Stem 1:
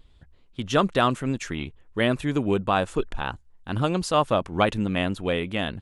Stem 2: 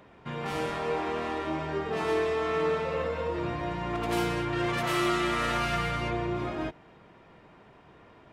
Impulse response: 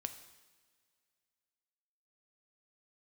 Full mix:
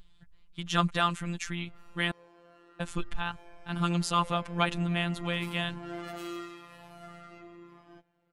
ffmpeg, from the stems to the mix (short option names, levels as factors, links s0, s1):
-filter_complex "[0:a]equalizer=f=450:t=o:w=1.1:g=-13.5,volume=1.19,asplit=3[s0][s1][s2];[s0]atrim=end=2.11,asetpts=PTS-STARTPTS,afade=t=out:st=2.106:d=0.004:c=hsin[s3];[s1]atrim=start=2.11:end=2.8,asetpts=PTS-STARTPTS,volume=0[s4];[s2]atrim=start=2.8,asetpts=PTS-STARTPTS,afade=t=in:d=0.004:c=hsin[s5];[s3][s4][s5]concat=n=3:v=0:a=1[s6];[1:a]highshelf=f=12000:g=7.5,asplit=2[s7][s8];[s8]adelay=4.1,afreqshift=0.89[s9];[s7][s9]amix=inputs=2:normalize=1,adelay=1300,volume=0.447,afade=t=in:st=3.59:d=0.63:silence=0.237137,afade=t=out:st=6.16:d=0.45:silence=0.421697[s10];[s6][s10]amix=inputs=2:normalize=0,afftfilt=real='hypot(re,im)*cos(PI*b)':imag='0':win_size=1024:overlap=0.75"